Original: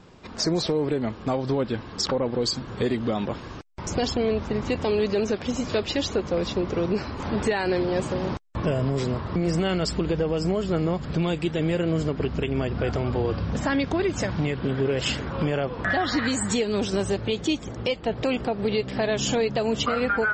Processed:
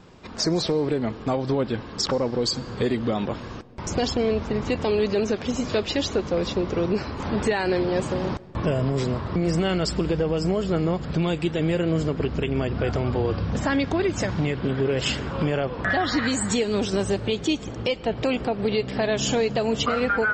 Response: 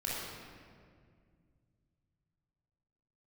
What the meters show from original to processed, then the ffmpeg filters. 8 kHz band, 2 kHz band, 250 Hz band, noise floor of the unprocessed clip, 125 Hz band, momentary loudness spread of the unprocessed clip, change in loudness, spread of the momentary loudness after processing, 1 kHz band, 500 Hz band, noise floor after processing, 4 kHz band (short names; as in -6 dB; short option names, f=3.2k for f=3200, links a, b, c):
+1.0 dB, +1.0 dB, +1.0 dB, -39 dBFS, +1.0 dB, 4 LU, +1.0 dB, 4 LU, +1.0 dB, +1.0 dB, -38 dBFS, +1.0 dB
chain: -filter_complex "[0:a]asplit=2[a][b];[1:a]atrim=start_sample=2205,adelay=101[c];[b][c]afir=irnorm=-1:irlink=0,volume=-25dB[d];[a][d]amix=inputs=2:normalize=0,volume=1dB"